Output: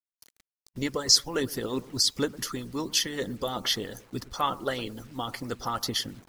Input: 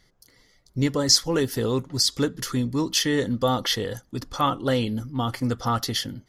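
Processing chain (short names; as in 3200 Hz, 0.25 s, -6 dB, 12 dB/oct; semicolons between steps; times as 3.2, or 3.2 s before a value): analogue delay 0.108 s, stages 1024, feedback 41%, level -15.5 dB; requantised 8-bit, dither none; harmonic-percussive split harmonic -14 dB; gain -1.5 dB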